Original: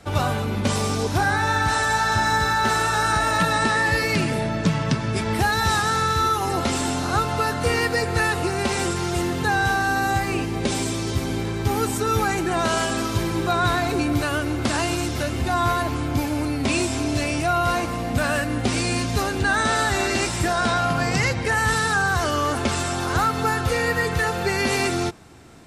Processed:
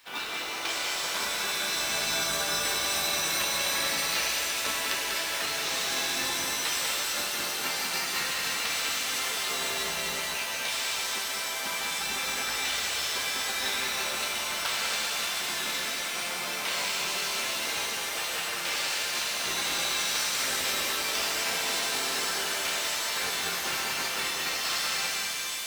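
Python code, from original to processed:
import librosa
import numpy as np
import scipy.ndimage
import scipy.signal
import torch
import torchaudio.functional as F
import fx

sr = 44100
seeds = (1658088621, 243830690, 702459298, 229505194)

y = scipy.signal.sosfilt(scipy.signal.butter(2, 3700.0, 'lowpass', fs=sr, output='sos'), x)
y = fx.spec_gate(y, sr, threshold_db=-15, keep='weak')
y = scipy.signal.sosfilt(scipy.signal.butter(2, 48.0, 'highpass', fs=sr, output='sos'), y)
y = fx.tilt_eq(y, sr, slope=3.0)
y = fx.quant_companded(y, sr, bits=4)
y = y + 10.0 ** (-4.5 / 20.0) * np.pad(y, (int(194 * sr / 1000.0), 0))[:len(y)]
y = fx.rev_shimmer(y, sr, seeds[0], rt60_s=3.5, semitones=7, shimmer_db=-2, drr_db=0.5)
y = F.gain(torch.from_numpy(y), -5.5).numpy()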